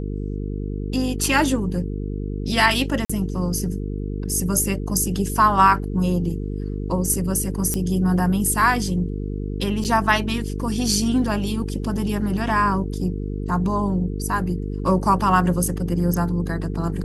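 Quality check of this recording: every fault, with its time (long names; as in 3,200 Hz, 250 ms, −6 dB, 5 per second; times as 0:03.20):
mains buzz 50 Hz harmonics 9 −27 dBFS
0:03.05–0:03.10: drop-out 45 ms
0:07.74: click −9 dBFS
0:09.84–0:09.85: drop-out 7.7 ms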